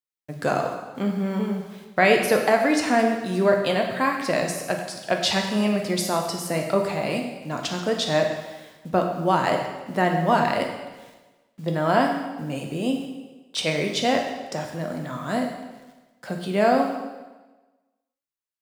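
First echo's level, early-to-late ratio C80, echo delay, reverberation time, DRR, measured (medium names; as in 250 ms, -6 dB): no echo, 7.0 dB, no echo, 1.2 s, 2.0 dB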